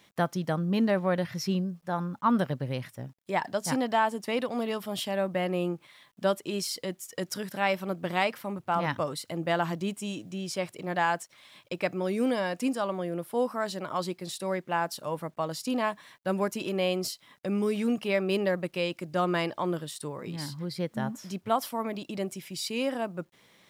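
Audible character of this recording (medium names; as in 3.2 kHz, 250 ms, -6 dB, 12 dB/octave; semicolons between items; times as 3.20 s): a quantiser's noise floor 12-bit, dither none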